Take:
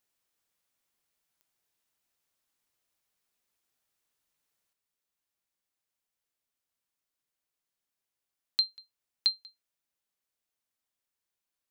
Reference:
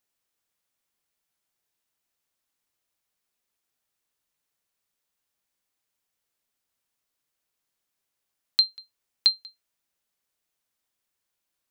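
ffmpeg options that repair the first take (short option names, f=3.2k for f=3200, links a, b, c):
-af "adeclick=t=4,asetnsamples=n=441:p=0,asendcmd='4.73 volume volume 6.5dB',volume=0dB"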